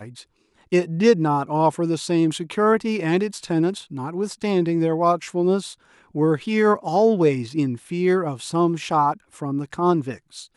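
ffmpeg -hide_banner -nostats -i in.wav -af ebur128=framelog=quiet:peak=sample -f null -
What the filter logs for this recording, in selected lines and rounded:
Integrated loudness:
  I:         -21.4 LUFS
  Threshold: -31.8 LUFS
Loudness range:
  LRA:         2.0 LU
  Threshold: -41.6 LUFS
  LRA low:   -22.8 LUFS
  LRA high:  -20.7 LUFS
Sample peak:
  Peak:       -5.0 dBFS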